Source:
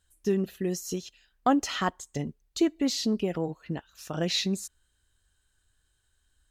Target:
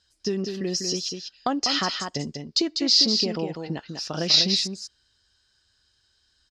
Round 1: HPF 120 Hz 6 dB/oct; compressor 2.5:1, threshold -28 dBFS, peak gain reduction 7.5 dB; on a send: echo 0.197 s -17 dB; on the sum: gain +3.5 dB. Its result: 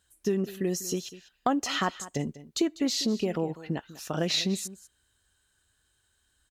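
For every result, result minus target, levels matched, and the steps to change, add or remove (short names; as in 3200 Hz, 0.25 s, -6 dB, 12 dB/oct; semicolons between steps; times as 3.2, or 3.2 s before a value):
echo-to-direct -11 dB; 4000 Hz band -5.0 dB
change: echo 0.197 s -6 dB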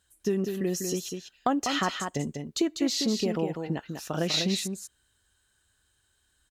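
4000 Hz band -5.0 dB
add after compressor: synth low-pass 5000 Hz, resonance Q 8.5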